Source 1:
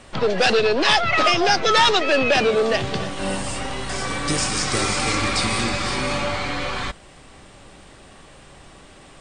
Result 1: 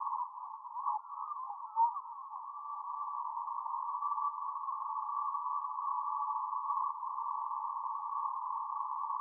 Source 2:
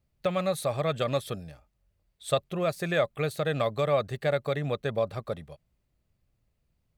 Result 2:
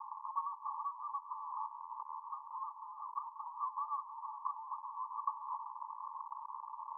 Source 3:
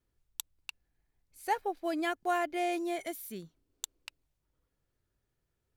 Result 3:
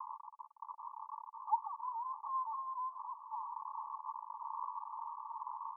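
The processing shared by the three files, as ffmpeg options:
-af "aeval=exprs='val(0)+0.5*0.0631*sgn(val(0))':c=same,acompressor=threshold=0.0355:ratio=6,asuperpass=centerf=1000:order=12:qfactor=3.4,volume=1.88"

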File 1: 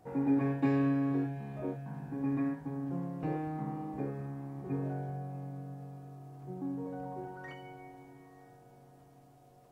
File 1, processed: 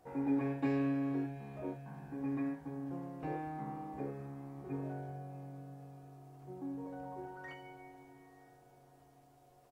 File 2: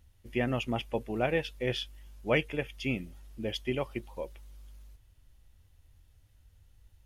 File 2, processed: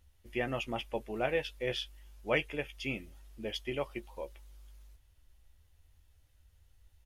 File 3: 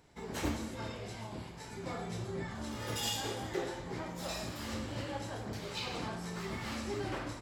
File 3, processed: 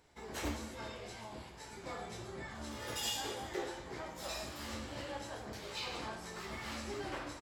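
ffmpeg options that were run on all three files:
-filter_complex "[0:a]equalizer=f=160:t=o:w=1.8:g=-7.5,asplit=2[s0][s1];[s1]adelay=14,volume=0.355[s2];[s0][s2]amix=inputs=2:normalize=0,volume=0.794"

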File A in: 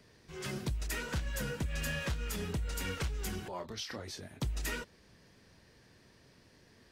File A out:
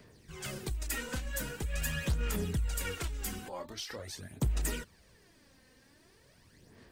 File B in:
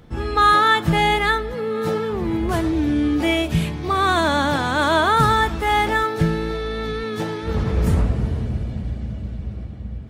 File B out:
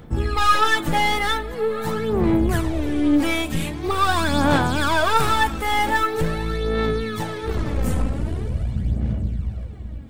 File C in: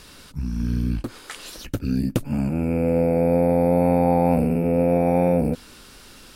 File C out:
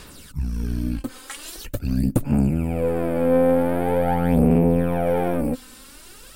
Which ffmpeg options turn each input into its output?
-af "aexciter=amount=2.3:drive=3.3:freq=7400,aeval=exprs='(tanh(5.62*val(0)+0.45)-tanh(0.45))/5.62':c=same,aphaser=in_gain=1:out_gain=1:delay=3.9:decay=0.55:speed=0.44:type=sinusoidal"

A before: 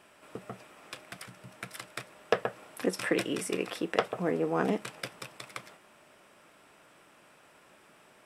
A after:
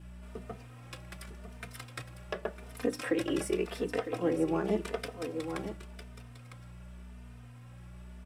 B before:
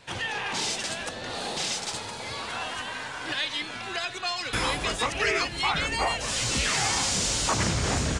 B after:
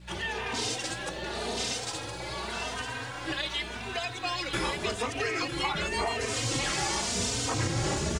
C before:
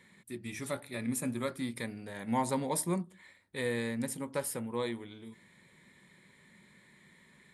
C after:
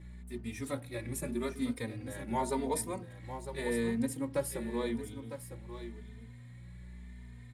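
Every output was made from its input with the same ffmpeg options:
-filter_complex "[0:a]adynamicequalizer=threshold=0.00562:dfrequency=350:dqfactor=0.98:tfrequency=350:tqfactor=0.98:attack=5:release=100:ratio=0.375:range=3.5:mode=boostabove:tftype=bell,aecho=1:1:954:0.316,aeval=exprs='val(0)+0.00708*(sin(2*PI*60*n/s)+sin(2*PI*2*60*n/s)/2+sin(2*PI*3*60*n/s)/3+sin(2*PI*4*60*n/s)/4+sin(2*PI*5*60*n/s)/5)':c=same,alimiter=limit=0.158:level=0:latency=1:release=191,equalizer=f=100:t=o:w=0.31:g=9,bandreject=f=50:t=h:w=6,bandreject=f=100:t=h:w=6,bandreject=f=150:t=h:w=6,bandreject=f=200:t=h:w=6,bandreject=f=250:t=h:w=6,bandreject=f=300:t=h:w=6,aeval=exprs='sgn(val(0))*max(abs(val(0))-0.00119,0)':c=same,asplit=2[s0][s1];[s1]adelay=3.1,afreqshift=0.88[s2];[s0][s2]amix=inputs=2:normalize=1"

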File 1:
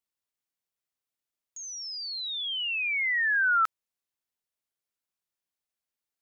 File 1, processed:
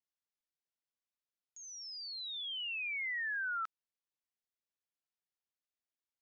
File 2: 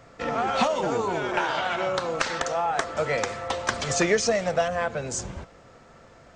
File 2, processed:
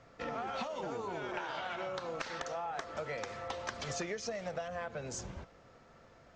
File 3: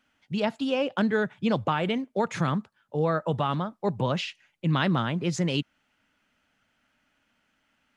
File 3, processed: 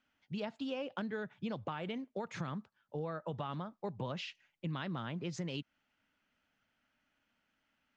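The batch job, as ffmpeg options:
-af "lowpass=f=6800:w=0.5412,lowpass=f=6800:w=1.3066,acompressor=threshold=0.0447:ratio=6,volume=0.376"

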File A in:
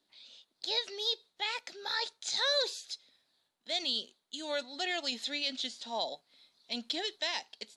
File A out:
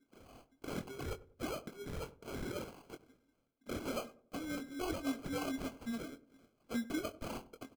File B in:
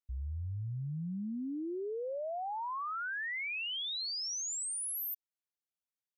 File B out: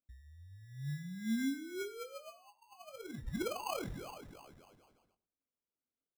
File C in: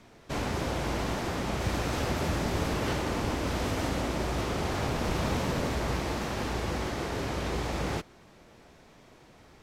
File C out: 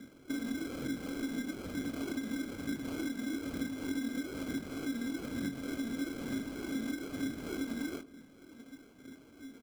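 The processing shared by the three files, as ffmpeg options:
-filter_complex "[0:a]lowpass=8900,highshelf=f=4200:g=-9,alimiter=level_in=1.41:limit=0.0631:level=0:latency=1:release=398,volume=0.708,asplit=3[s0][s1][s2];[s0]bandpass=f=270:t=q:w=8,volume=1[s3];[s1]bandpass=f=2290:t=q:w=8,volume=0.501[s4];[s2]bandpass=f=3010:t=q:w=8,volume=0.355[s5];[s3][s4][s5]amix=inputs=3:normalize=0,aphaser=in_gain=1:out_gain=1:delay=4.7:decay=0.65:speed=1.1:type=triangular,acompressor=threshold=0.00562:ratio=12,acrusher=samples=24:mix=1:aa=0.000001,asplit=2[s6][s7];[s7]adelay=22,volume=0.355[s8];[s6][s8]amix=inputs=2:normalize=0,asplit=2[s9][s10];[s10]adelay=96,lowpass=f=800:p=1,volume=0.158,asplit=2[s11][s12];[s12]adelay=96,lowpass=f=800:p=1,volume=0.41,asplit=2[s13][s14];[s14]adelay=96,lowpass=f=800:p=1,volume=0.41,asplit=2[s15][s16];[s16]adelay=96,lowpass=f=800:p=1,volume=0.41[s17];[s9][s11][s13][s15][s17]amix=inputs=5:normalize=0,volume=3.76"

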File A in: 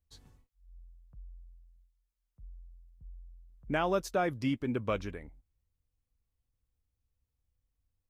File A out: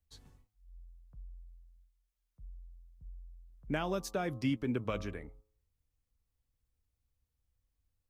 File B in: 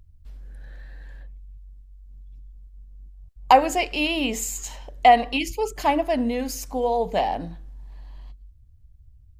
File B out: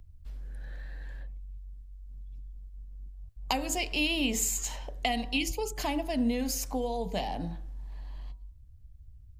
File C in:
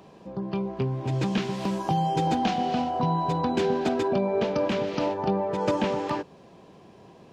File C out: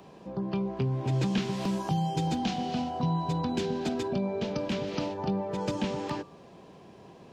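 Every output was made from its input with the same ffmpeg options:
-filter_complex "[0:a]bandreject=f=106.6:t=h:w=4,bandreject=f=213.2:t=h:w=4,bandreject=f=319.8:t=h:w=4,bandreject=f=426.4:t=h:w=4,bandreject=f=533:t=h:w=4,bandreject=f=639.6:t=h:w=4,bandreject=f=746.2:t=h:w=4,bandreject=f=852.8:t=h:w=4,bandreject=f=959.4:t=h:w=4,bandreject=f=1066:t=h:w=4,bandreject=f=1172.6:t=h:w=4,bandreject=f=1279.2:t=h:w=4,acrossover=split=250|3000[s0][s1][s2];[s1]acompressor=threshold=0.0224:ratio=6[s3];[s0][s3][s2]amix=inputs=3:normalize=0"

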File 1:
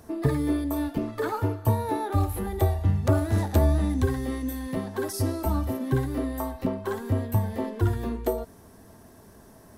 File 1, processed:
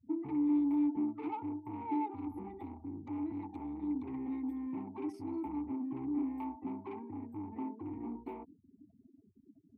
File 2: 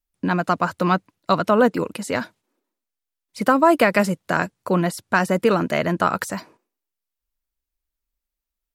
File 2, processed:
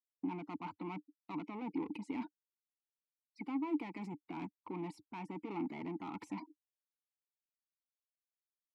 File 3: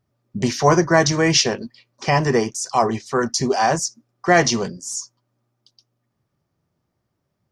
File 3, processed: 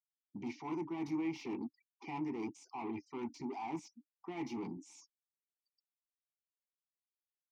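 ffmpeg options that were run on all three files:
-filter_complex "[0:a]adynamicequalizer=threshold=0.00891:dfrequency=2800:dqfactor=2.2:tfrequency=2800:tqfactor=2.2:attack=5:release=100:ratio=0.375:range=1.5:mode=cutabove:tftype=bell,afftfilt=real='re*gte(hypot(re,im),0.0158)':imag='im*gte(hypot(re,im),0.0158)':win_size=1024:overlap=0.75,areverse,acompressor=threshold=0.0631:ratio=20,areverse,equalizer=f=94:w=1.6:g=4,asoftclip=type=tanh:threshold=0.0299,asplit=3[s0][s1][s2];[s0]bandpass=f=300:t=q:w=8,volume=1[s3];[s1]bandpass=f=870:t=q:w=8,volume=0.501[s4];[s2]bandpass=f=2240:t=q:w=8,volume=0.355[s5];[s3][s4][s5]amix=inputs=3:normalize=0,volume=2"

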